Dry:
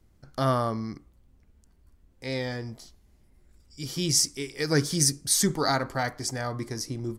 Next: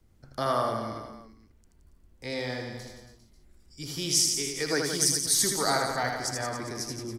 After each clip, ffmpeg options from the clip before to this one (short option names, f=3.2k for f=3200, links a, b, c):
-filter_complex "[0:a]acrossover=split=340|570|3100[a][b][c][d];[a]acompressor=threshold=-38dB:ratio=6[e];[e][b][c][d]amix=inputs=4:normalize=0,aecho=1:1:80|172|277.8|399.5|539.4:0.631|0.398|0.251|0.158|0.1,volume=-1.5dB"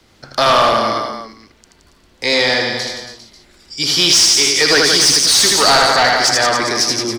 -filter_complex "[0:a]asplit=2[a][b];[b]highpass=f=720:p=1,volume=24dB,asoftclip=type=tanh:threshold=-9dB[c];[a][c]amix=inputs=2:normalize=0,lowpass=f=3.1k:p=1,volume=-6dB,equalizer=f=4.2k:w=0.95:g=9,volume=5dB"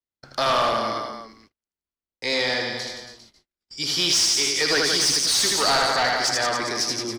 -af "agate=range=-39dB:threshold=-42dB:ratio=16:detection=peak,volume=-9dB"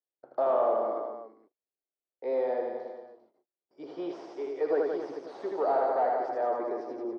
-af "acrusher=bits=5:mode=log:mix=0:aa=0.000001,asuperpass=centerf=520:order=4:qfactor=1.2"